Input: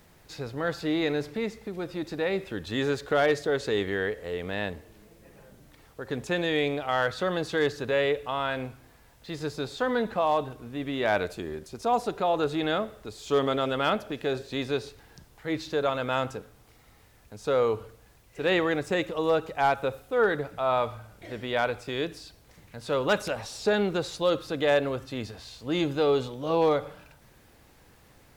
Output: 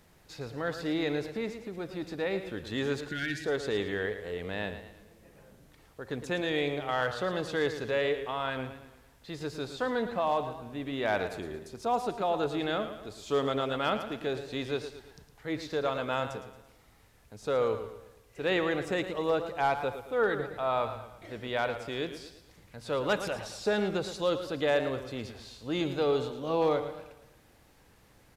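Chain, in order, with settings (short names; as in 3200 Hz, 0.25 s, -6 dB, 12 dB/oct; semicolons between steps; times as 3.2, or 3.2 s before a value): downsampling 32000 Hz; spectral gain 3.08–3.44, 370–1400 Hz -26 dB; warbling echo 0.112 s, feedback 45%, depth 77 cents, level -10.5 dB; gain -4 dB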